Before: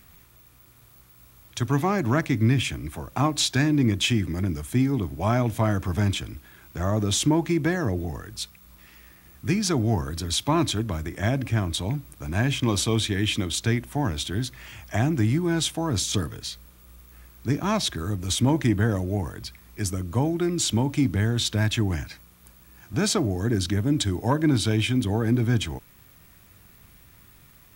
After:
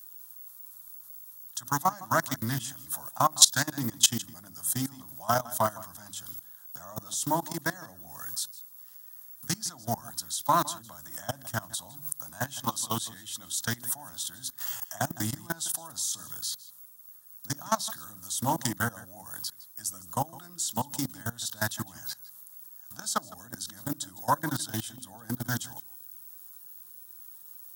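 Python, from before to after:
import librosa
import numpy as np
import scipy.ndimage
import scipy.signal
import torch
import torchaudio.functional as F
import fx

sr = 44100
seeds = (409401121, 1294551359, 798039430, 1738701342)

y = fx.hum_notches(x, sr, base_hz=50, count=7)
y = fx.level_steps(y, sr, step_db=22)
y = scipy.signal.sosfilt(scipy.signal.butter(2, 100.0, 'highpass', fs=sr, output='sos'), y)
y = fx.riaa(y, sr, side='recording')
y = fx.fixed_phaser(y, sr, hz=970.0, stages=4)
y = y + 10.0 ** (-19.0 / 20.0) * np.pad(y, (int(159 * sr / 1000.0), 0))[:len(y)]
y = fx.doppler_dist(y, sr, depth_ms=0.13)
y = y * 10.0 ** (5.5 / 20.0)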